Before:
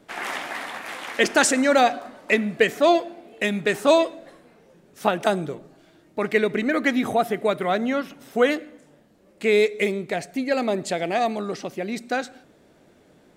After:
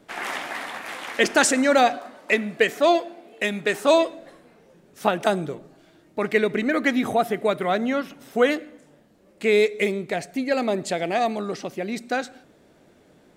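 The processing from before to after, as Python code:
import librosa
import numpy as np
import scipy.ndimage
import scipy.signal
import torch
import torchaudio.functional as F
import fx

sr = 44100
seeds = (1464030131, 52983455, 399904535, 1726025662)

y = fx.low_shelf(x, sr, hz=150.0, db=-11.0, at=(1.96, 3.94))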